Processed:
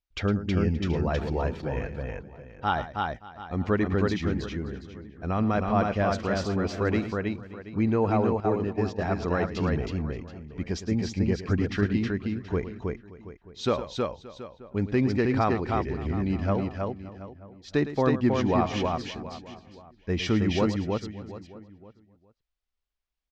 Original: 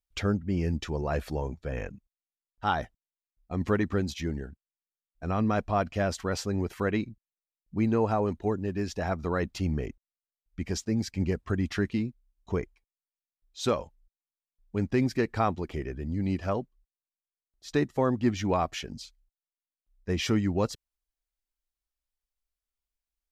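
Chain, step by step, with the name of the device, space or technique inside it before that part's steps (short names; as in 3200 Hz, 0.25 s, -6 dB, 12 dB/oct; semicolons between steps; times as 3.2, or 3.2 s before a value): high shelf 4400 Hz +8.5 dB; tapped delay 0.109/0.319/0.575/0.728 s -13/-3/-19.5/-15.5 dB; 8.4–9.04 gate -29 dBFS, range -11 dB; shout across a valley (air absorption 190 m; outdoor echo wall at 160 m, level -21 dB); gain +1.5 dB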